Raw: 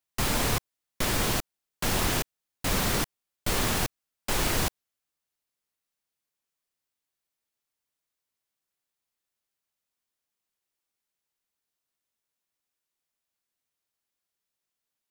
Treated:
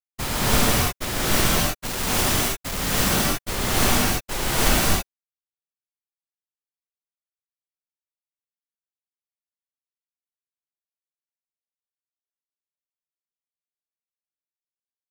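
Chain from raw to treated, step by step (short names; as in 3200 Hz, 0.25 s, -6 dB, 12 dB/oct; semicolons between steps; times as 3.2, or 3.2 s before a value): 1.85–2.94 companded quantiser 2-bit; expander -24 dBFS; non-linear reverb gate 0.35 s rising, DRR -8 dB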